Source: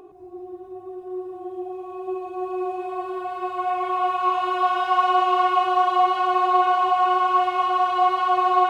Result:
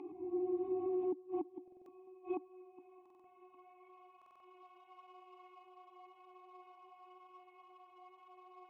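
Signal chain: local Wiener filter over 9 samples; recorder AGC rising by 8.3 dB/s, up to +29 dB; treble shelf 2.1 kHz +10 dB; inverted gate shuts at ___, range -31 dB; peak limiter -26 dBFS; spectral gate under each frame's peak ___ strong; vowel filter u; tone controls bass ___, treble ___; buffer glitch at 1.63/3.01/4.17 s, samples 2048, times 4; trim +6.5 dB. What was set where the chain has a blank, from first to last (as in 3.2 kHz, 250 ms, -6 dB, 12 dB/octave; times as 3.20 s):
-17 dBFS, -60 dB, +9 dB, +6 dB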